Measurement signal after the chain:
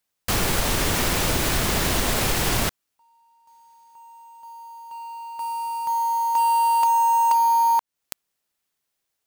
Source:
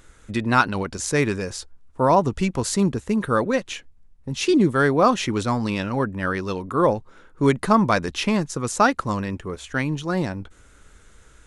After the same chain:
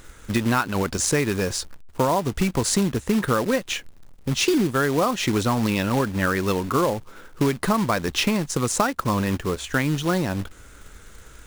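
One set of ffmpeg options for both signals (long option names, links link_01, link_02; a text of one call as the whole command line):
ffmpeg -i in.wav -af "acompressor=threshold=-23dB:ratio=10,acrusher=bits=3:mode=log:mix=0:aa=0.000001,volume=5.5dB" out.wav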